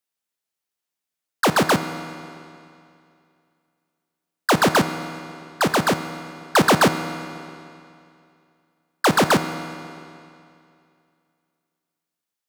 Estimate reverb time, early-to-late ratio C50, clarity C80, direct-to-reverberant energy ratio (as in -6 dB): 2.5 s, 10.5 dB, 11.5 dB, 9.5 dB